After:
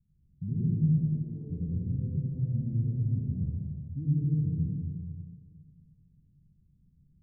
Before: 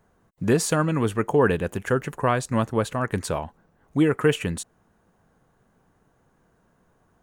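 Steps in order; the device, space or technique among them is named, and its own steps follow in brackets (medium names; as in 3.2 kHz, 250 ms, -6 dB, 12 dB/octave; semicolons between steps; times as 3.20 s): 0.87–1.50 s: frequency weighting A; band-passed feedback delay 93 ms, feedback 74%, band-pass 540 Hz, level -6 dB; club heard from the street (peak limiter -14.5 dBFS, peak gain reduction 7.5 dB; low-pass 170 Hz 24 dB/octave; reverberation RT60 1.5 s, pre-delay 80 ms, DRR -6 dB); trim -4 dB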